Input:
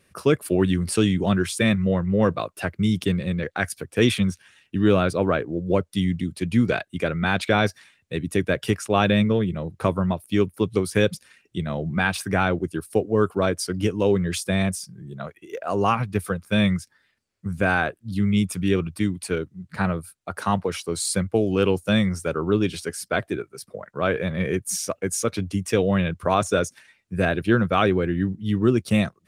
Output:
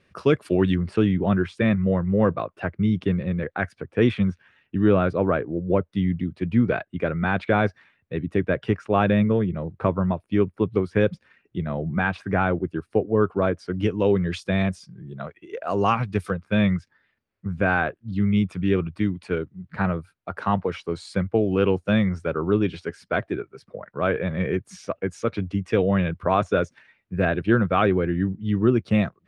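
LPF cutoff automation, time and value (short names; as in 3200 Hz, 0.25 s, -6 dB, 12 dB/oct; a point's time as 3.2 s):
4100 Hz
from 0.75 s 1900 Hz
from 13.8 s 3200 Hz
from 15.64 s 5500 Hz
from 16.3 s 2500 Hz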